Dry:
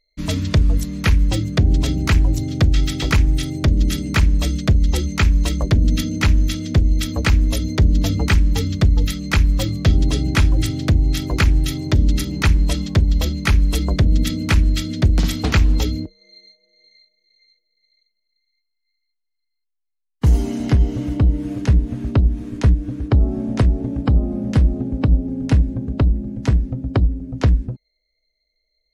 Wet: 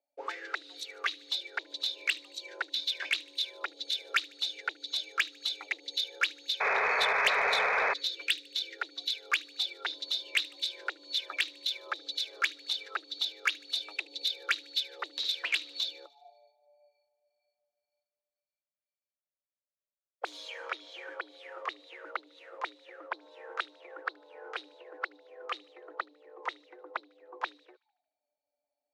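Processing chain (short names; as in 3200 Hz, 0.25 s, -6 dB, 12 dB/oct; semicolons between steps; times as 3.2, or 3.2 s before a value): auto-wah 340–3600 Hz, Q 13, up, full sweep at -13.5 dBFS; in parallel at 0 dB: compressor, threshold -50 dBFS, peak gain reduction 23 dB; on the sum: spectral gain 7.25–8.78, 340–1100 Hz -9 dB; frequency shift +240 Hz; painted sound noise, 6.6–7.94, 390–2600 Hz -34 dBFS; soft clip -25 dBFS, distortion -13 dB; on a send: thin delay 75 ms, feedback 55%, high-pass 3000 Hz, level -20 dB; on the sum: gain +7 dB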